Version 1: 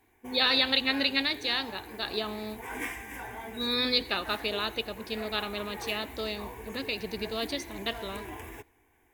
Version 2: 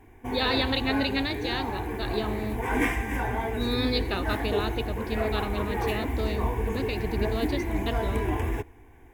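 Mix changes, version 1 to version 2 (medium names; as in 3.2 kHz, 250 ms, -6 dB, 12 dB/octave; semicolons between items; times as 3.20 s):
background +10.0 dB; master: add tilt EQ -2.5 dB/octave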